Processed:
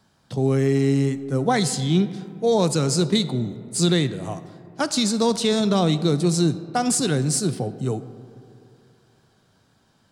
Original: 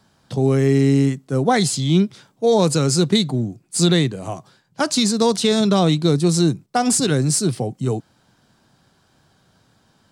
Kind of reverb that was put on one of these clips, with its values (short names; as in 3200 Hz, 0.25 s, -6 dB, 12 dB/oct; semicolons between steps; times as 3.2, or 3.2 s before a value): digital reverb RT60 2.6 s, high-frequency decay 0.4×, pre-delay 10 ms, DRR 13.5 dB; gain -3.5 dB